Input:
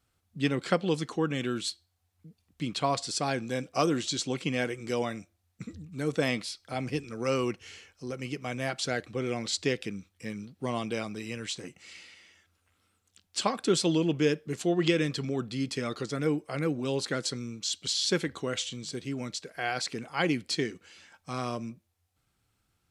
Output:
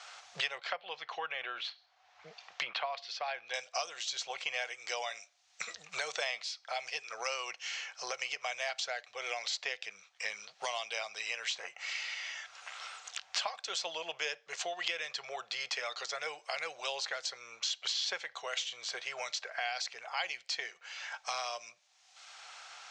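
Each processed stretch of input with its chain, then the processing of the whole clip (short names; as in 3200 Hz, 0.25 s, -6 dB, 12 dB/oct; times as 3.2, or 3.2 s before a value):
0.58–3.54 treble ducked by the level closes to 2000 Hz, closed at -28 dBFS + air absorption 140 m
whole clip: elliptic band-pass 680–6500 Hz, stop band 40 dB; dynamic EQ 1300 Hz, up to -4 dB, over -50 dBFS, Q 1.5; three-band squash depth 100%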